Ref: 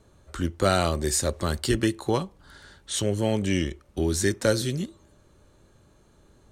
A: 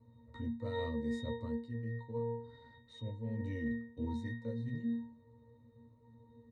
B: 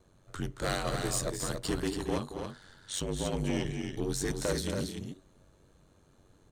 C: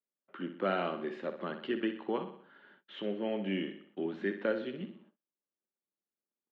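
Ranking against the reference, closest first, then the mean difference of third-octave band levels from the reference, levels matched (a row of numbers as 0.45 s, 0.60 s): B, C, A; 8.0 dB, 10.0 dB, 13.5 dB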